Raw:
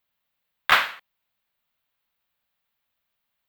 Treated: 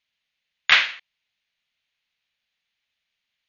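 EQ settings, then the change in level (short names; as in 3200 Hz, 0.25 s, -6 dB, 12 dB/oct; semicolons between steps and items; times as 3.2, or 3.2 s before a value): brick-wall FIR low-pass 6900 Hz; resonant high shelf 1600 Hz +9 dB, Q 1.5; -5.0 dB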